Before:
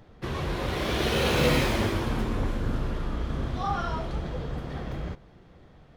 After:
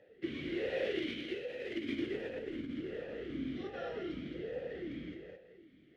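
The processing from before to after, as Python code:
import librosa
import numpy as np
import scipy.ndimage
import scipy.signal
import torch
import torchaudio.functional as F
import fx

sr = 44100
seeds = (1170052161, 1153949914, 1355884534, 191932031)

y = fx.over_compress(x, sr, threshold_db=-28.0, ratio=-0.5)
y = fx.echo_feedback(y, sr, ms=217, feedback_pct=21, wet_db=-5)
y = fx.vowel_sweep(y, sr, vowels='e-i', hz=1.3)
y = F.gain(torch.from_numpy(y), 3.0).numpy()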